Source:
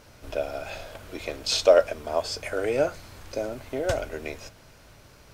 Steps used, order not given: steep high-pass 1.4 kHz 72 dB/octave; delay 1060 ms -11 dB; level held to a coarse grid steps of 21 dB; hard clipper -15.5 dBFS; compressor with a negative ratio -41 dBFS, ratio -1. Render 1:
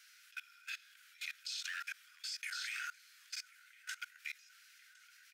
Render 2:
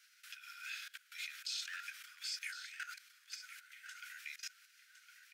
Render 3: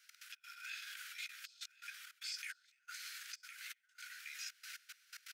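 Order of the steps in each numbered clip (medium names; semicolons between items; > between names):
delay > hard clipper > steep high-pass > level held to a coarse grid > compressor with a negative ratio; hard clipper > level held to a coarse grid > steep high-pass > compressor with a negative ratio > delay; hard clipper > compressor with a negative ratio > delay > level held to a coarse grid > steep high-pass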